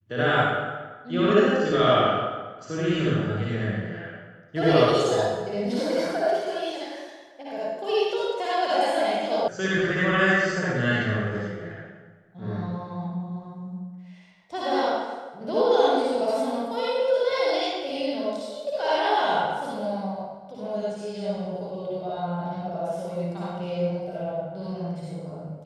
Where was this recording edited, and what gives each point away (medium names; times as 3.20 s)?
9.48 s: sound stops dead